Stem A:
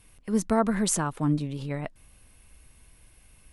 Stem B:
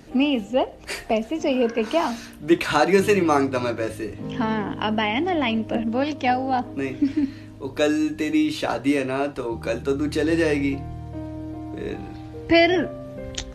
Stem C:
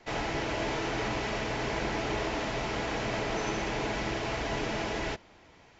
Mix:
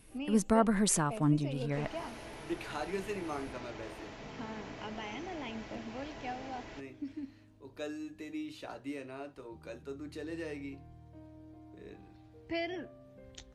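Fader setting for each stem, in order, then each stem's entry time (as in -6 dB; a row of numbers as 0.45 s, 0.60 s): -3.0 dB, -20.0 dB, -15.5 dB; 0.00 s, 0.00 s, 1.65 s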